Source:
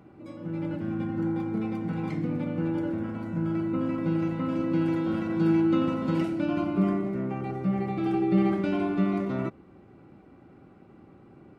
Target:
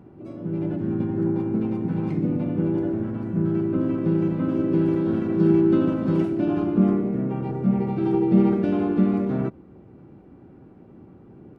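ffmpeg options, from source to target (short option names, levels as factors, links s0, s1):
-filter_complex "[0:a]tiltshelf=f=720:g=6,asplit=2[s0][s1];[s1]asetrate=52444,aresample=44100,atempo=0.840896,volume=0.447[s2];[s0][s2]amix=inputs=2:normalize=0"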